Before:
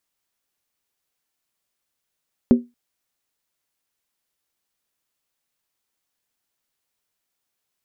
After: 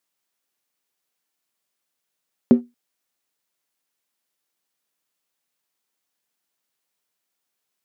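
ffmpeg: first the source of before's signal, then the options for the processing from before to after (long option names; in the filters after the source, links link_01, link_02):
-f lavfi -i "aevalsrc='0.531*pow(10,-3*t/0.22)*sin(2*PI*241*t)+0.188*pow(10,-3*t/0.174)*sin(2*PI*384.2*t)+0.0668*pow(10,-3*t/0.151)*sin(2*PI*514.8*t)+0.0237*pow(10,-3*t/0.145)*sin(2*PI*553.3*t)+0.00841*pow(10,-3*t/0.135)*sin(2*PI*639.4*t)':duration=0.23:sample_rate=44100"
-filter_complex "[0:a]highpass=150,asplit=2[link_01][link_02];[link_02]aeval=exprs='sgn(val(0))*max(abs(val(0))-0.0211,0)':channel_layout=same,volume=-11dB[link_03];[link_01][link_03]amix=inputs=2:normalize=0"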